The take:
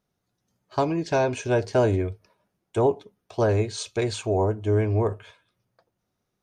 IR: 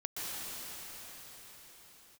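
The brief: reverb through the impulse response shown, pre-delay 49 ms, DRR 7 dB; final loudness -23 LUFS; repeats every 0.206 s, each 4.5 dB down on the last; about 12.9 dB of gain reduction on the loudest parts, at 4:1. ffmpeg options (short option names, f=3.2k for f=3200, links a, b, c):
-filter_complex "[0:a]acompressor=threshold=-33dB:ratio=4,aecho=1:1:206|412|618|824|1030|1236|1442|1648|1854:0.596|0.357|0.214|0.129|0.0772|0.0463|0.0278|0.0167|0.01,asplit=2[a][b];[1:a]atrim=start_sample=2205,adelay=49[c];[b][c]afir=irnorm=-1:irlink=0,volume=-11.5dB[d];[a][d]amix=inputs=2:normalize=0,volume=11.5dB"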